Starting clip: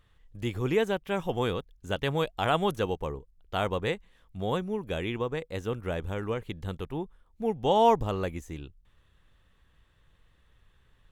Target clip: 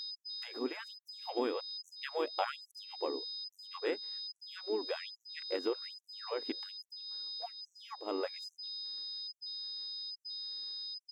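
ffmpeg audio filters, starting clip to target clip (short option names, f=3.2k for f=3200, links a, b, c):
-filter_complex "[0:a]lowshelf=f=240:g=9,agate=range=-33dB:threshold=-49dB:ratio=3:detection=peak,aeval=exprs='val(0)+0.0178*sin(2*PI*5000*n/s)':c=same,acompressor=threshold=-28dB:ratio=16,asplit=3[a][b][c];[b]asetrate=33038,aresample=44100,atempo=1.33484,volume=-9dB[d];[c]asetrate=37084,aresample=44100,atempo=1.18921,volume=-18dB[e];[a][d][e]amix=inputs=3:normalize=0,highshelf=f=3.6k:g=-11,afftfilt=real='re*gte(b*sr/1024,220*pow(5700/220,0.5+0.5*sin(2*PI*1.2*pts/sr)))':imag='im*gte(b*sr/1024,220*pow(5700/220,0.5+0.5*sin(2*PI*1.2*pts/sr)))':win_size=1024:overlap=0.75,volume=2dB"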